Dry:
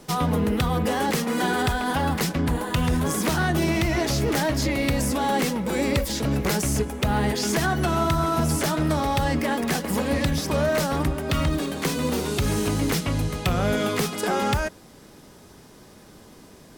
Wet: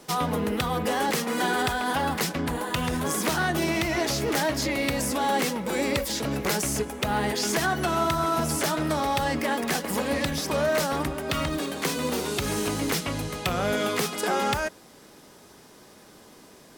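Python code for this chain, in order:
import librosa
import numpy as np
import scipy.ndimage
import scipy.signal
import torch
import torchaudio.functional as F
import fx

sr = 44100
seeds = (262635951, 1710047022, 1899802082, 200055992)

y = fx.low_shelf(x, sr, hz=180.0, db=-12.0)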